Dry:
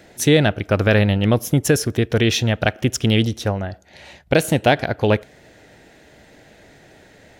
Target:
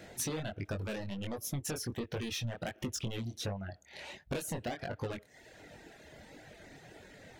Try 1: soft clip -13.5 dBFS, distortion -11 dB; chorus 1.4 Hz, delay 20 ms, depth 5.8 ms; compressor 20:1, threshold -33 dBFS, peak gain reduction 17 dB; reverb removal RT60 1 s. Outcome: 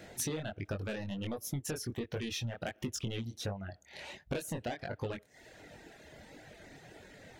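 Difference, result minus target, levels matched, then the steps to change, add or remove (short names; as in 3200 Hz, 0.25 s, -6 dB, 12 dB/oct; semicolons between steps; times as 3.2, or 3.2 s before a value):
soft clip: distortion -4 dB
change: soft clip -19.5 dBFS, distortion -6 dB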